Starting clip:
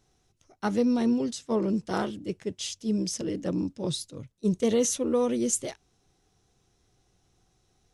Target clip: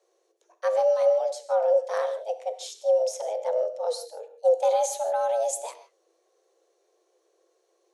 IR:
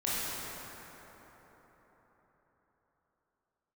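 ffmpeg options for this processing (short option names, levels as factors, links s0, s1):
-filter_complex "[0:a]equalizer=f=200:t=o:w=0.91:g=11,afreqshift=330,asplit=2[s0][s1];[1:a]atrim=start_sample=2205,afade=t=out:st=0.22:d=0.01,atrim=end_sample=10143[s2];[s1][s2]afir=irnorm=-1:irlink=0,volume=0.211[s3];[s0][s3]amix=inputs=2:normalize=0,volume=0.501"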